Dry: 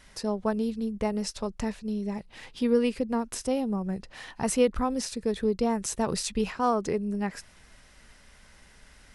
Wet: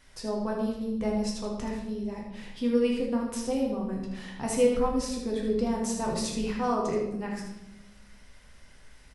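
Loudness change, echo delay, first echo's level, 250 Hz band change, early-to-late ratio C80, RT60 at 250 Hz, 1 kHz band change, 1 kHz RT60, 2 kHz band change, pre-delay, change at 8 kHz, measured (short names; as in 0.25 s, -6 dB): -0.5 dB, 78 ms, -6.5 dB, -0.5 dB, 6.5 dB, 1.6 s, -2.0 dB, 0.80 s, -2.0 dB, 8 ms, -2.5 dB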